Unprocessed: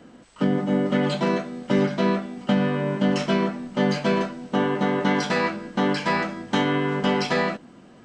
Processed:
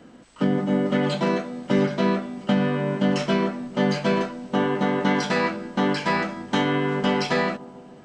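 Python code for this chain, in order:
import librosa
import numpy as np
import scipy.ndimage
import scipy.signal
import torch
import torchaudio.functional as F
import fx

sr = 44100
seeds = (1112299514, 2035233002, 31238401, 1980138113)

y = fx.echo_bbd(x, sr, ms=145, stages=1024, feedback_pct=73, wet_db=-21.0)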